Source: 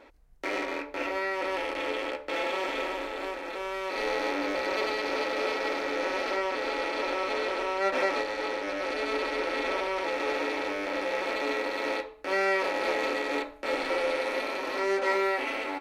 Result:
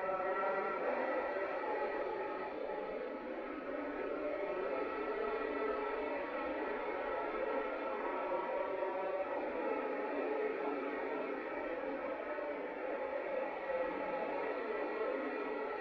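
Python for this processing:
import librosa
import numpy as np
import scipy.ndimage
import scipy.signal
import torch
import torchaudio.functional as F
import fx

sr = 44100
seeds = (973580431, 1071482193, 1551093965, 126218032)

p1 = fx.spec_blur(x, sr, span_ms=498.0)
p2 = fx.dereverb_blind(p1, sr, rt60_s=1.5)
p3 = scipy.signal.sosfilt(scipy.signal.butter(2, 1600.0, 'lowpass', fs=sr, output='sos'), p2)
p4 = fx.dereverb_blind(p3, sr, rt60_s=1.9)
p5 = p4 + fx.echo_split(p4, sr, split_hz=520.0, low_ms=528, high_ms=116, feedback_pct=52, wet_db=-4.5, dry=0)
p6 = fx.paulstretch(p5, sr, seeds[0], factor=4.1, window_s=0.05, from_s=7.72)
y = p6 * 10.0 ** (1.0 / 20.0)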